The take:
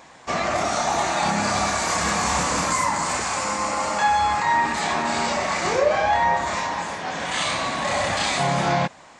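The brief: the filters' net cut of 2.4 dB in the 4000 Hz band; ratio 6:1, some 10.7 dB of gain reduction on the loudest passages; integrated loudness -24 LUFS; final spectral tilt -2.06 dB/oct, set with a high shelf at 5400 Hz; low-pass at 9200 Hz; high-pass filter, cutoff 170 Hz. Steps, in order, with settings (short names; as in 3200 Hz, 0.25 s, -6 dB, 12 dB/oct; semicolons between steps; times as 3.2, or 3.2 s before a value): HPF 170 Hz; LPF 9200 Hz; bell 4000 Hz -6 dB; high shelf 5400 Hz +7 dB; compressor 6:1, threshold -27 dBFS; gain +5.5 dB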